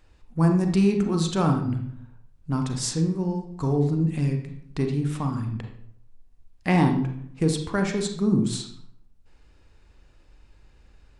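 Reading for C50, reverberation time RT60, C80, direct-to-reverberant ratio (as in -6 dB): 6.5 dB, 0.65 s, 10.5 dB, 4.0 dB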